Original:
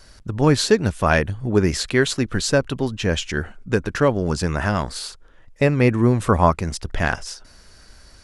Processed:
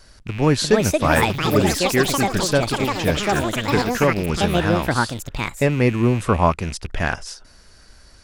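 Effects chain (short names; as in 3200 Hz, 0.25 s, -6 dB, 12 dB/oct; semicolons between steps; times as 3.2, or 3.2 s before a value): rattling part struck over -31 dBFS, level -23 dBFS; echoes that change speed 0.436 s, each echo +6 st, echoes 3; gain -1 dB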